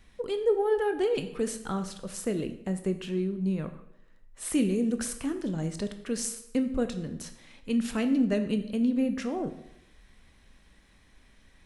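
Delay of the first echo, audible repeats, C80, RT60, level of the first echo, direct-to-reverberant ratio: no echo, no echo, 13.0 dB, 0.80 s, no echo, 8.0 dB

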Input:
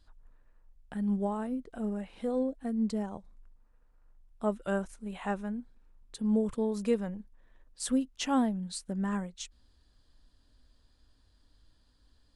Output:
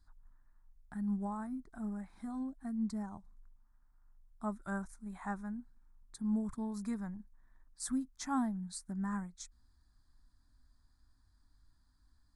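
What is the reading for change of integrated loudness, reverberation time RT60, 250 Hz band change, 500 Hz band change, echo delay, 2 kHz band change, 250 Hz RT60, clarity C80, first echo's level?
-6.5 dB, no reverb, -5.5 dB, -17.0 dB, no echo, -5.5 dB, no reverb, no reverb, no echo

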